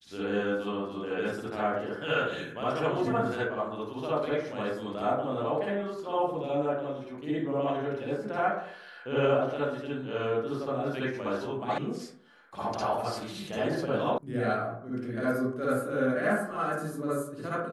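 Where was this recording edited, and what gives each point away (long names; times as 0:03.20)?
0:11.78: cut off before it has died away
0:14.18: cut off before it has died away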